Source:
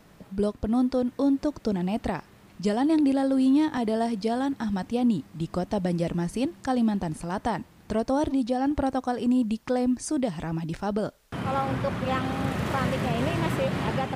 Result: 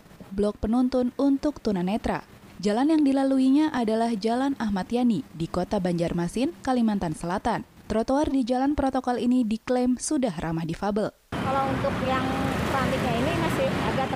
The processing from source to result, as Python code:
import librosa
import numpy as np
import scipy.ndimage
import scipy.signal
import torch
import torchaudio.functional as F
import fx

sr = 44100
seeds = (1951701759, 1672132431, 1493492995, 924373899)

p1 = fx.dynamic_eq(x, sr, hz=130.0, q=1.4, threshold_db=-43.0, ratio=4.0, max_db=-5)
p2 = fx.level_steps(p1, sr, step_db=18)
y = p1 + (p2 * 10.0 ** (0.5 / 20.0))